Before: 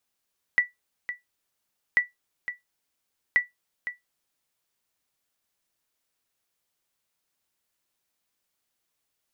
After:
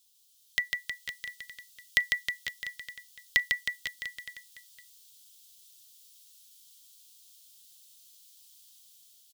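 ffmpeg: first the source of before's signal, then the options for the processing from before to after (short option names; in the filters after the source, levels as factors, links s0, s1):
-f lavfi -i "aevalsrc='0.266*(sin(2*PI*1960*mod(t,1.39))*exp(-6.91*mod(t,1.39)/0.16)+0.251*sin(2*PI*1960*max(mod(t,1.39)-0.51,0))*exp(-6.91*max(mod(t,1.39)-0.51,0)/0.16))':d=4.17:s=44100"
-af "firequalizer=gain_entry='entry(130,0);entry(310,-13);entry(480,-4);entry(770,-14);entry(2200,-7);entry(3200,14)':delay=0.05:min_phase=1,dynaudnorm=f=300:g=5:m=2.24,aecho=1:1:150|315|496.5|696.2|915.8:0.631|0.398|0.251|0.158|0.1"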